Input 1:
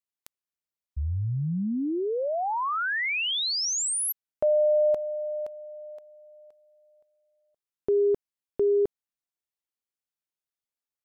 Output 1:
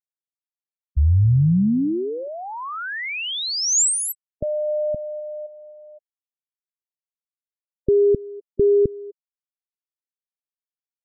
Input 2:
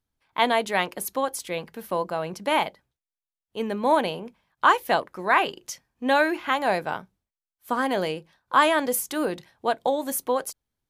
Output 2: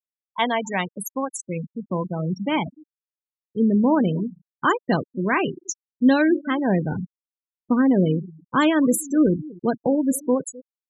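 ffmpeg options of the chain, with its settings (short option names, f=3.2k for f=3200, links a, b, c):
-filter_complex "[0:a]equalizer=f=7.1k:t=o:w=0.65:g=11.5,asplit=2[a][b];[b]aecho=0:1:255|510:0.112|0.0303[c];[a][c]amix=inputs=2:normalize=0,asubboost=boost=11.5:cutoff=230,afftfilt=real='re*gte(hypot(re,im),0.1)':imag='im*gte(hypot(re,im),0.1)':win_size=1024:overlap=0.75"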